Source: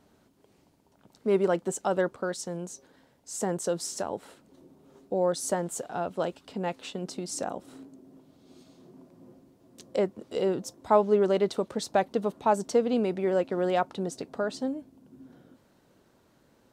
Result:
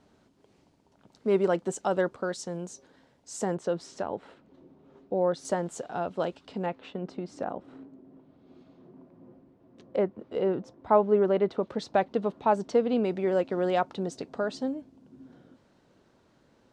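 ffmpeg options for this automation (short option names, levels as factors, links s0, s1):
-af "asetnsamples=n=441:p=0,asendcmd='3.55 lowpass f 3100;5.45 lowpass f 5500;6.66 lowpass f 2200;11.63 lowpass f 3900;13.05 lowpass f 6400',lowpass=7200"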